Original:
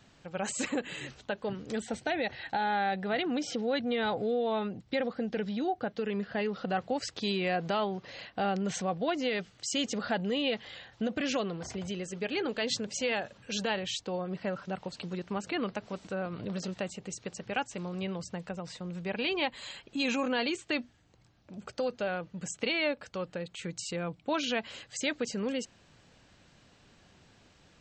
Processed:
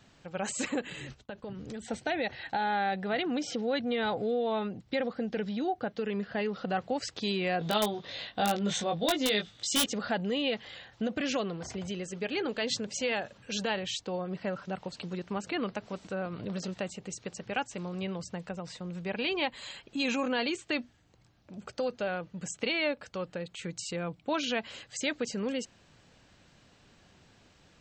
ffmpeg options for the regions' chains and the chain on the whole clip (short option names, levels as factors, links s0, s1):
-filter_complex "[0:a]asettb=1/sr,asplit=3[s0][s1][s2];[s0]atrim=end=0.904[s3];[s1]atrim=start=0.9:end=1.85,asetpts=PTS-STARTPTS,afade=t=in:d=0.004:c=qsin,afade=t=out:st=0.946:d=0.004:c=qsin,agate=range=0.0224:threshold=0.00447:ratio=3:release=100:detection=peak,lowshelf=f=160:g=10.5,acompressor=threshold=0.0126:ratio=4:attack=3.2:release=140:knee=1:detection=peak[s4];[s2]atrim=start=1.846[s5];[s3][s4]acrossfade=d=0.004:c1=hsin:c2=qsin[s6];[s6][s5]acrossfade=d=0.004:c1=qsin:c2=hsin,asettb=1/sr,asplit=3[s7][s8][s9];[s7]atrim=end=7.594[s10];[s8]atrim=start=7.59:end=9.86,asetpts=PTS-STARTPTS,afade=t=in:d=0.004:c=qsin,afade=t=out:st=2.266:d=0.004:c=qsin,equalizer=f=3600:t=o:w=0.23:g=15,aeval=exprs='(mod(7.94*val(0)+1,2)-1)/7.94':c=same,asplit=2[s11][s12];[s12]adelay=19,volume=0.668[s13];[s11][s13]amix=inputs=2:normalize=0,atrim=end_sample=100107[s14];[s9]atrim=start=9.856[s15];[s10][s14]acrossfade=d=0.004:c1=hsin:c2=qsin[s16];[s16][s15]acrossfade=d=0.004:c1=qsin:c2=hsin"